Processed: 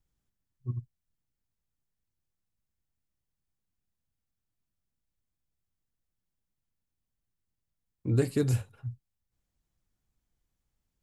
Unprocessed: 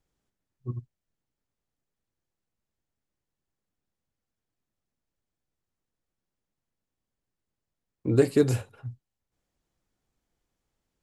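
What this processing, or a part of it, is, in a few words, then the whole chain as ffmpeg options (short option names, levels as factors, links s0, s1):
smiley-face EQ: -af "lowshelf=f=200:g=8.5,equalizer=f=440:t=o:w=1.9:g=-5,highshelf=f=9200:g=6,volume=0.562"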